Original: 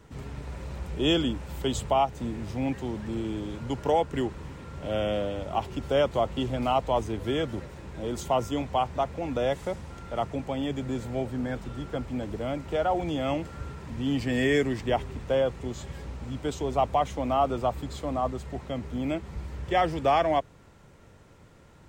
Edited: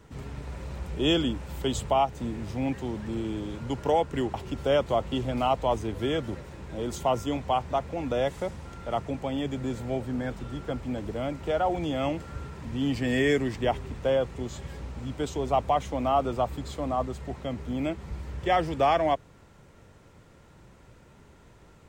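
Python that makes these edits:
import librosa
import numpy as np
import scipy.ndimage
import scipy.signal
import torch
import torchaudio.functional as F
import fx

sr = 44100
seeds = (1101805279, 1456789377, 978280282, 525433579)

y = fx.edit(x, sr, fx.cut(start_s=4.34, length_s=1.25), tone=tone)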